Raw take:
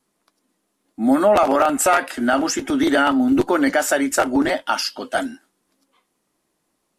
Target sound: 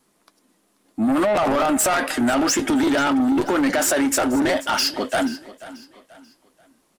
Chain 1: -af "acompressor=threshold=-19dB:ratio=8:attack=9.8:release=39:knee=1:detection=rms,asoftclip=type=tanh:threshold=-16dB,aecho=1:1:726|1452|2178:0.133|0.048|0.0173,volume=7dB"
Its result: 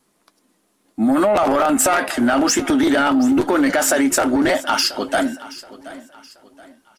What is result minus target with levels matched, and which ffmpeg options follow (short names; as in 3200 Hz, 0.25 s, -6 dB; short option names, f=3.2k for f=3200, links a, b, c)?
echo 0.241 s late; soft clip: distortion -7 dB
-af "acompressor=threshold=-19dB:ratio=8:attack=9.8:release=39:knee=1:detection=rms,asoftclip=type=tanh:threshold=-22.5dB,aecho=1:1:485|970|1455:0.133|0.048|0.0173,volume=7dB"